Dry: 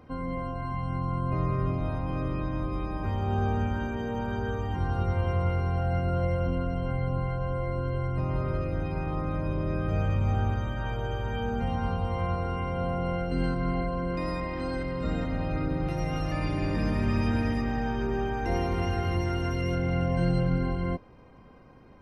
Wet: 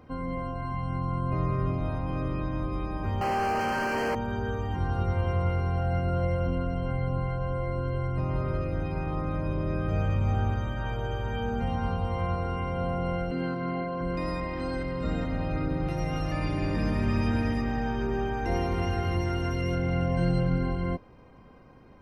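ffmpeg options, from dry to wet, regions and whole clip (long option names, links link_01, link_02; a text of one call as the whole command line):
ffmpeg -i in.wav -filter_complex "[0:a]asettb=1/sr,asplit=3[link_01][link_02][link_03];[link_01]atrim=end=3.214[link_04];[link_02]atrim=start=3.21:end=4.15,asetpts=PTS-STARTPTS,afade=type=in:duration=0.004:curve=qsin,afade=type=out:start_time=0.936:duration=0.004:curve=qsin,aemphasis=mode=production:type=bsi,asplit=2[link_05][link_06];[link_06]highpass=frequency=720:poles=1,volume=40dB,asoftclip=type=tanh:threshold=-20dB[link_07];[link_05][link_07]amix=inputs=2:normalize=0,lowpass=frequency=1300:poles=1,volume=-6dB,asuperstop=centerf=3600:order=20:qfactor=3.7[link_08];[link_03]atrim=start=4.146[link_09];[link_04][link_08]acrossfade=duration=0.004:curve1=hsin:curve2=qsin[link_10];[link_10][link_09]acrossfade=duration=0.004:curve1=qsin:curve2=hsin,asettb=1/sr,asplit=3[link_11][link_12][link_13];[link_11]atrim=end=13.314[link_14];[link_12]atrim=start=13.31:end=14.01,asetpts=PTS-STARTPTS,afade=type=in:duration=0.004:curve=qsin,afade=type=out:start_time=0.696:duration=0.004:curve=qsin,acrossover=split=3600[link_15][link_16];[link_16]acompressor=threshold=-56dB:ratio=4:attack=1:release=60[link_17];[link_15][link_17]amix=inputs=2:normalize=0,highpass=170,lowpass=5100[link_18];[link_13]atrim=start=14.006[link_19];[link_14][link_18]acrossfade=duration=0.004:curve1=hsin:curve2=qsin[link_20];[link_20][link_19]acrossfade=duration=0.004:curve1=qsin:curve2=hsin" out.wav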